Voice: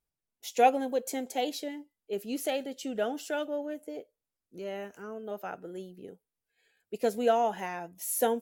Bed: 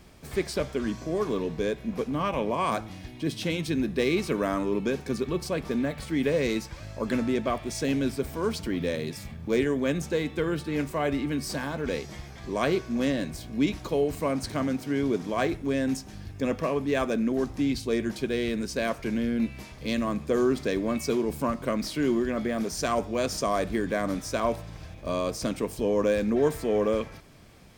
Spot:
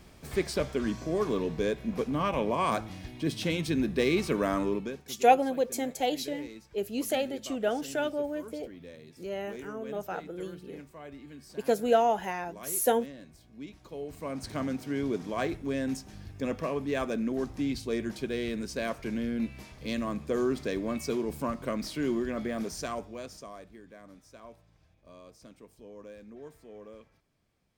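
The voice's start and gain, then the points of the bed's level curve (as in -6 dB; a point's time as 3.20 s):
4.65 s, +2.0 dB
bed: 4.68 s -1 dB
5.13 s -18.5 dB
13.72 s -18.5 dB
14.56 s -4.5 dB
22.67 s -4.5 dB
23.75 s -23 dB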